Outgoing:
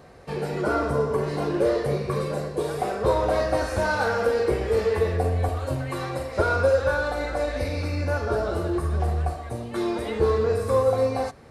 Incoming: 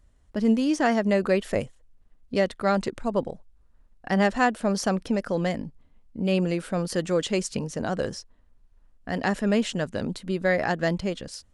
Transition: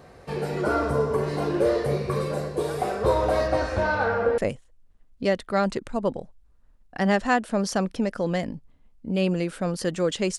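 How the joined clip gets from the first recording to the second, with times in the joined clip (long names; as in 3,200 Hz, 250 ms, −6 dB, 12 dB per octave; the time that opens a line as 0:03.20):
outgoing
0:03.47–0:04.38: low-pass filter 7,200 Hz → 1,600 Hz
0:04.38: continue with incoming from 0:01.49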